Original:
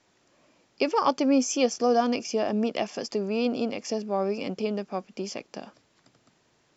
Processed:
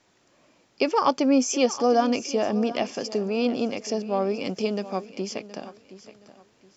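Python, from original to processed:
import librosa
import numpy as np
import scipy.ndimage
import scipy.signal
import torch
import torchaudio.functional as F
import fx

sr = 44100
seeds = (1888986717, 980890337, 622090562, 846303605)

y = fx.high_shelf(x, sr, hz=5300.0, db=11.0, at=(4.45, 5.06))
y = fx.echo_feedback(y, sr, ms=720, feedback_pct=29, wet_db=-16.0)
y = y * librosa.db_to_amplitude(2.0)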